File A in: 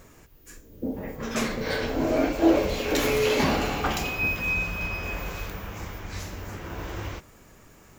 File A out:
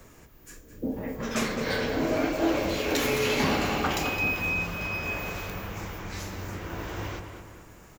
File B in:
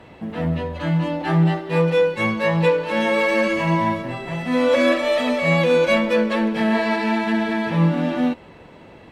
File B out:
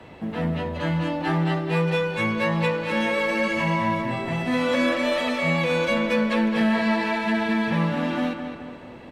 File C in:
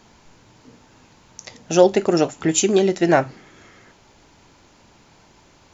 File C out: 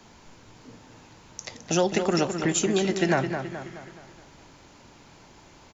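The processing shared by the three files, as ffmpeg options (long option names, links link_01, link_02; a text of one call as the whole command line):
ffmpeg -i in.wav -filter_complex "[0:a]acrossover=split=80|280|810[link_01][link_02][link_03][link_04];[link_01]acompressor=threshold=-45dB:ratio=4[link_05];[link_02]acompressor=threshold=-26dB:ratio=4[link_06];[link_03]acompressor=threshold=-31dB:ratio=4[link_07];[link_04]acompressor=threshold=-25dB:ratio=4[link_08];[link_05][link_06][link_07][link_08]amix=inputs=4:normalize=0,asplit=2[link_09][link_10];[link_10]adelay=213,lowpass=frequency=3800:poles=1,volume=-7.5dB,asplit=2[link_11][link_12];[link_12]adelay=213,lowpass=frequency=3800:poles=1,volume=0.5,asplit=2[link_13][link_14];[link_14]adelay=213,lowpass=frequency=3800:poles=1,volume=0.5,asplit=2[link_15][link_16];[link_16]adelay=213,lowpass=frequency=3800:poles=1,volume=0.5,asplit=2[link_17][link_18];[link_18]adelay=213,lowpass=frequency=3800:poles=1,volume=0.5,asplit=2[link_19][link_20];[link_20]adelay=213,lowpass=frequency=3800:poles=1,volume=0.5[link_21];[link_09][link_11][link_13][link_15][link_17][link_19][link_21]amix=inputs=7:normalize=0" out.wav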